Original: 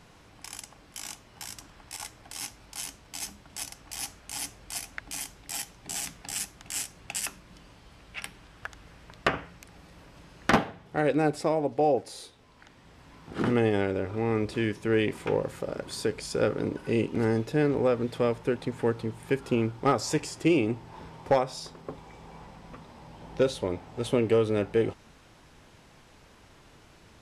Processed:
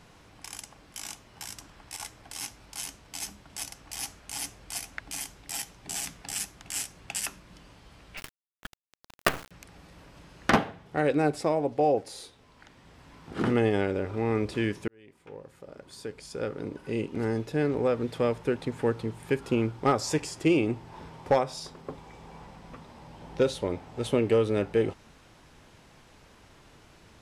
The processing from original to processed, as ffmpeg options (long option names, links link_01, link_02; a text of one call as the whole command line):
ffmpeg -i in.wav -filter_complex "[0:a]asettb=1/sr,asplit=3[link_01][link_02][link_03];[link_01]atrim=end=8.174[link_04];[link_02]atrim=start=8.17:end=9.51,asetpts=PTS-STARTPTS,afade=type=in:duration=0.004:curve=qsin,afade=type=out:start_time=1.336:duration=0.004:curve=qsin,acrusher=bits=4:dc=4:mix=0:aa=0.000001[link_05];[link_03]atrim=start=9.506[link_06];[link_04][link_05]acrossfade=duration=0.004:curve1=hsin:curve2=qsin[link_07];[link_07][link_06]acrossfade=duration=0.004:curve1=qsin:curve2=hsin,asplit=2[link_08][link_09];[link_08]atrim=end=14.88,asetpts=PTS-STARTPTS,afade=type=out:start_time=14.876:duration=0.004:curve=hsin[link_10];[link_09]atrim=start=14.88,asetpts=PTS-STARTPTS,afade=type=in:duration=3.48[link_11];[link_10][link_11]concat=n=2:v=0:a=1" out.wav